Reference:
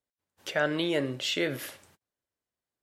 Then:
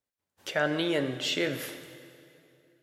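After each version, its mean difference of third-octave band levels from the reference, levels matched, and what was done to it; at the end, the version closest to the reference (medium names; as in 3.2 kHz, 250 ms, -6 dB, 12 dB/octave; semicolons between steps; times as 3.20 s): 3.0 dB: plate-style reverb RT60 2.7 s, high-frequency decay 0.8×, DRR 10 dB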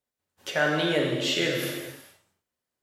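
6.5 dB: gated-style reverb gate 490 ms falling, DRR -1 dB; trim +1 dB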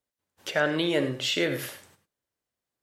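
1.5 dB: gated-style reverb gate 120 ms rising, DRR 10.5 dB; trim +2.5 dB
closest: third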